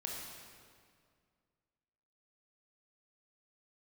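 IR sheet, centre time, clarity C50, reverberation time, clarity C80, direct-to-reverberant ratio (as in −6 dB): 101 ms, 0.0 dB, 2.1 s, 1.5 dB, −2.0 dB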